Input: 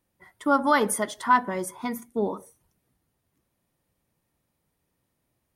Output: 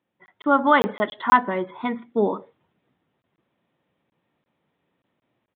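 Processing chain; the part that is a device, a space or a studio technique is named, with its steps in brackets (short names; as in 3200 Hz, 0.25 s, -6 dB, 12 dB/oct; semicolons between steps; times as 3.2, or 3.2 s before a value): call with lost packets (HPF 170 Hz 12 dB/oct; downsampling 8000 Hz; AGC gain up to 6 dB; packet loss packets of 20 ms random)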